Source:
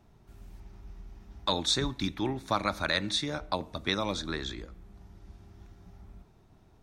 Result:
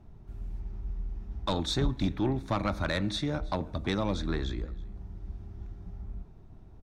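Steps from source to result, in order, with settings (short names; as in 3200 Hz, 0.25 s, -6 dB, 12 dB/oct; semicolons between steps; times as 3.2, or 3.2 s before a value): tilt -2.5 dB/oct; soft clip -19.5 dBFS, distortion -16 dB; on a send: echo 0.325 s -23.5 dB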